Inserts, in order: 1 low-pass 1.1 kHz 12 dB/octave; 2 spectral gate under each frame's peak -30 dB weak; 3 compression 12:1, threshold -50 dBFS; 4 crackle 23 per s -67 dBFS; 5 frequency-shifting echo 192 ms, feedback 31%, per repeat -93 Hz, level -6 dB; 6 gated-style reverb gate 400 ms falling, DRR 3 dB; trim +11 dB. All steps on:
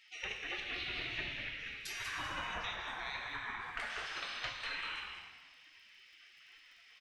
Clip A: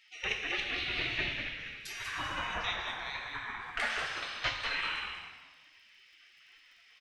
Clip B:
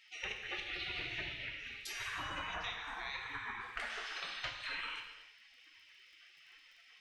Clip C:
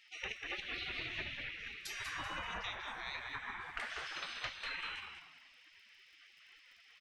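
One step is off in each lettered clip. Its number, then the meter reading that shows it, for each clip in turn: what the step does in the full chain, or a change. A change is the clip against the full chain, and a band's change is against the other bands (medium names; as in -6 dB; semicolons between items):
3, mean gain reduction 2.5 dB; 5, echo-to-direct -0.5 dB to -3.0 dB; 6, echo-to-direct -0.5 dB to -5.5 dB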